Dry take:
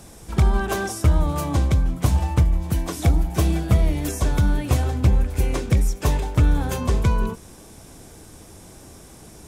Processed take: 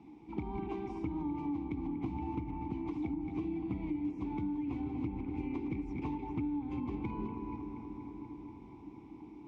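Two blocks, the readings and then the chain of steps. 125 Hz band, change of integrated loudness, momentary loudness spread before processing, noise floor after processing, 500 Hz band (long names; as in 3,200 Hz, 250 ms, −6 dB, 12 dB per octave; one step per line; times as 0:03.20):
−23.0 dB, −16.5 dB, 4 LU, −52 dBFS, −15.0 dB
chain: delay that plays each chunk backwards 244 ms, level −9 dB
formant filter u
bucket-brigade delay 239 ms, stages 4,096, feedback 78%, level −12.5 dB
downward compressor, threshold −38 dBFS, peak gain reduction 11.5 dB
low-pass filter 4,400 Hz 12 dB per octave
low-shelf EQ 380 Hz +7 dB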